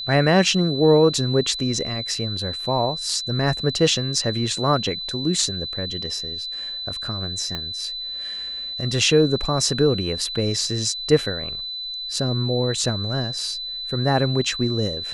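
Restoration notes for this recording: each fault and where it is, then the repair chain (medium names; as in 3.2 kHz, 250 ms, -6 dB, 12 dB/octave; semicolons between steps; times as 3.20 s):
whine 4 kHz -28 dBFS
7.55 s: pop -14 dBFS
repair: de-click; band-stop 4 kHz, Q 30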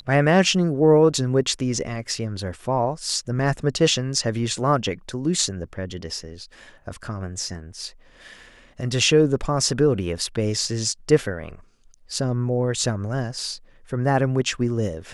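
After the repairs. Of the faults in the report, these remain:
7.55 s: pop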